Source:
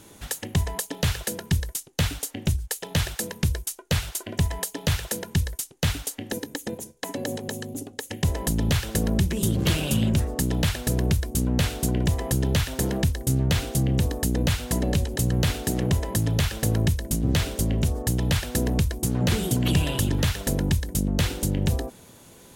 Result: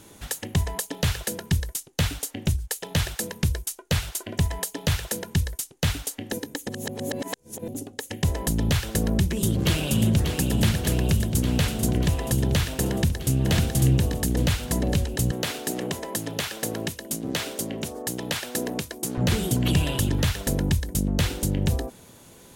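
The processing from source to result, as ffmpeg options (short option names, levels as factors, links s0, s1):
-filter_complex "[0:a]asplit=2[s0][s1];[s1]afade=t=in:st=9.37:d=0.01,afade=t=out:st=10.26:d=0.01,aecho=0:1:590|1180|1770|2360|2950|3540|4130|4720|5310|5900|6490|7080:0.446684|0.357347|0.285877|0.228702|0.182962|0.146369|0.117095|0.0936763|0.0749411|0.0599529|0.0479623|0.0383698[s2];[s0][s2]amix=inputs=2:normalize=0,asplit=2[s3][s4];[s4]afade=t=in:st=12.89:d=0.01,afade=t=out:st=13.41:d=0.01,aecho=0:1:550|1100|1650|2200:0.794328|0.238298|0.0714895|0.0214469[s5];[s3][s5]amix=inputs=2:normalize=0,asettb=1/sr,asplit=3[s6][s7][s8];[s6]atrim=end=15.314[s9];[s7]atrim=start=15.31:end=19.18,asetpts=PTS-STARTPTS,afade=t=in:d=0.004:c=qsin,afade=t=out:st=3.866:d=0.004:c=qsin,highpass=270[s10];[s8]atrim=start=19.176[s11];[s9][s10]acrossfade=d=0.004:c1=hsin:c2=qsin[s12];[s12][s11]acrossfade=d=0.004:c1=qsin:c2=hsin,asplit=3[s13][s14][s15];[s13]atrim=end=6.692[s16];[s14]atrim=start=6.688:end=7.682,asetpts=PTS-STARTPTS,areverse[s17];[s15]atrim=start=7.678[s18];[s16][s17]acrossfade=d=0.004:c1=hsin:c2=hsin[s19];[s19][s18]acrossfade=d=0.004:c1=hsin:c2=hsin"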